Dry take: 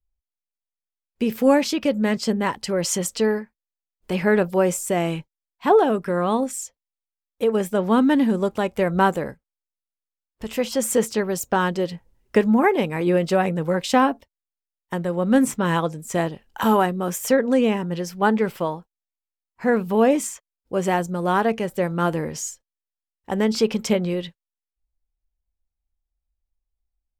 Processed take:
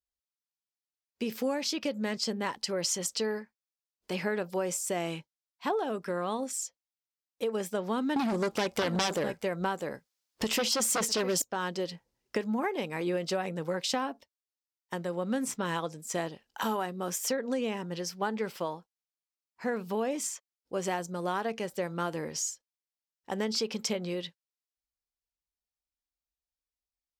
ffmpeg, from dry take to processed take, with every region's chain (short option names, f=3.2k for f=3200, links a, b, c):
-filter_complex "[0:a]asettb=1/sr,asplit=3[a][b][c];[a]atrim=end=8.164[d];[b]atrim=start=8.16:end=11.42,asetpts=PTS-STARTPTS,afade=t=in:d=0.004:c=qsin,afade=t=out:st=3.256:d=0.004:c=qsin,aecho=1:1:652:0.178,atrim=end_sample=143766,aeval=exprs='0.501*sin(PI/2*3.98*val(0)/0.501)':c=same[e];[c]atrim=start=11.416[f];[d][e]acrossfade=d=0.004:c1=hsin:c2=qsin[g];[g][f]acrossfade=d=0.004:c1=qsin:c2=hsin,highpass=f=240:p=1,equalizer=f=5.1k:w=1.2:g=8,acompressor=threshold=-20dB:ratio=6,volume=-7dB"